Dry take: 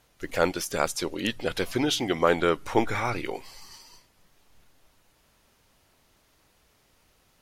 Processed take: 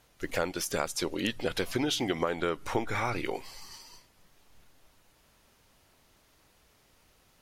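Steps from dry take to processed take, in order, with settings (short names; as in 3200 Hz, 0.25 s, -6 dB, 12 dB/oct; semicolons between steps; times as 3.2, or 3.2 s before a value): compressor 12:1, threshold -25 dBFS, peak gain reduction 10.5 dB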